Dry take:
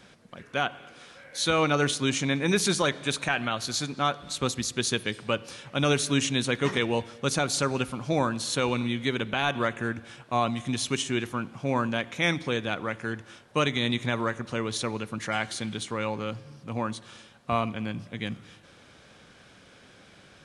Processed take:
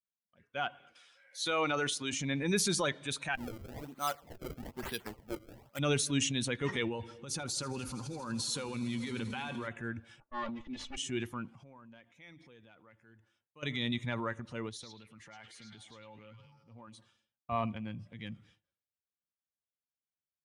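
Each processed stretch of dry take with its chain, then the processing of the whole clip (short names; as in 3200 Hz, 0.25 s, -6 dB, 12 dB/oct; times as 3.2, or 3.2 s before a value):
0.95–2.13 low shelf 200 Hz -10.5 dB + mismatched tape noise reduction encoder only
3.35–5.79 low shelf 160 Hz -10.5 dB + decimation with a swept rate 28×, swing 160% 1.1 Hz + core saturation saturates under 370 Hz
6.87–9.68 Butterworth band-stop 660 Hz, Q 7.3 + negative-ratio compressor -30 dBFS + swelling echo 80 ms, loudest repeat 5, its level -18 dB
10.2–10.97 minimum comb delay 3.5 ms + low-pass opened by the level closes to 1100 Hz, open at -27 dBFS + air absorption 100 m
11.48–13.63 compressor 3:1, threshold -42 dBFS + mismatched tape noise reduction encoder only
14.69–16.98 compressor 2:1, threshold -42 dBFS + delay with a stepping band-pass 0.106 s, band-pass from 4400 Hz, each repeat -0.7 oct, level 0 dB
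whole clip: per-bin expansion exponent 1.5; transient shaper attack -3 dB, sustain +6 dB; expander -53 dBFS; gain -4 dB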